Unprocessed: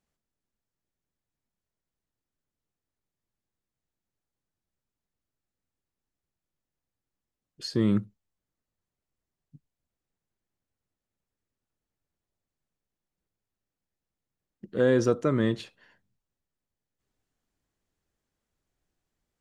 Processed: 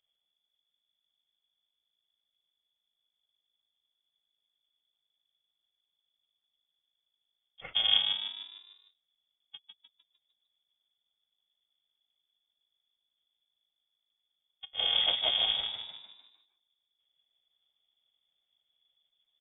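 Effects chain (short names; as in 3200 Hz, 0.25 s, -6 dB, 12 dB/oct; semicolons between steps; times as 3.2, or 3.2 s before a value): FFT order left unsorted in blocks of 128 samples; low shelf 280 Hz +7.5 dB; inverted band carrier 3400 Hz; frequency-shifting echo 0.151 s, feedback 47%, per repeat +53 Hz, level -5 dB; harmonic-percussive split percussive +8 dB; gain -6 dB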